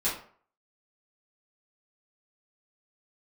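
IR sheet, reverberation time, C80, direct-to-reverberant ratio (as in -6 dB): 0.50 s, 10.5 dB, -11.0 dB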